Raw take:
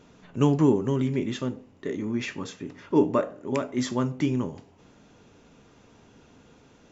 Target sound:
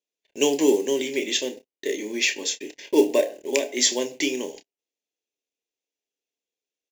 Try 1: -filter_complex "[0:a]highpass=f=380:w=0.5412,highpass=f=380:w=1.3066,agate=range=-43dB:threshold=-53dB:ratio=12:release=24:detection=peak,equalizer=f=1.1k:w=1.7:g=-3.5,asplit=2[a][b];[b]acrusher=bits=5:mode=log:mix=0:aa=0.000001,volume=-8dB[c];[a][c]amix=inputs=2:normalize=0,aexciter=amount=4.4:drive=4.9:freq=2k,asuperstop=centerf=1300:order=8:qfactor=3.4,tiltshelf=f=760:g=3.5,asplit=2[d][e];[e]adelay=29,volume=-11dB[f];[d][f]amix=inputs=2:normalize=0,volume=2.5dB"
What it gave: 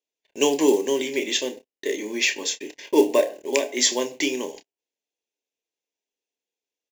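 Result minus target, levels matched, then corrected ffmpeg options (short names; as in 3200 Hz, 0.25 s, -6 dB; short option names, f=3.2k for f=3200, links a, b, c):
1000 Hz band +4.0 dB
-filter_complex "[0:a]highpass=f=380:w=0.5412,highpass=f=380:w=1.3066,agate=range=-43dB:threshold=-53dB:ratio=12:release=24:detection=peak,equalizer=f=1.1k:w=1.7:g=-11,asplit=2[a][b];[b]acrusher=bits=5:mode=log:mix=0:aa=0.000001,volume=-8dB[c];[a][c]amix=inputs=2:normalize=0,aexciter=amount=4.4:drive=4.9:freq=2k,asuperstop=centerf=1300:order=8:qfactor=3.4,tiltshelf=f=760:g=3.5,asplit=2[d][e];[e]adelay=29,volume=-11dB[f];[d][f]amix=inputs=2:normalize=0,volume=2.5dB"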